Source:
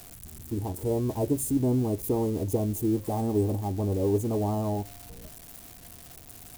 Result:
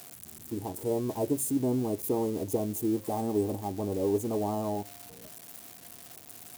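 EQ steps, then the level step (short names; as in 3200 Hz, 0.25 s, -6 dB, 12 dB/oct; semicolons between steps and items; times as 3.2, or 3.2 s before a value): HPF 130 Hz 12 dB/oct; low shelf 260 Hz -5 dB; 0.0 dB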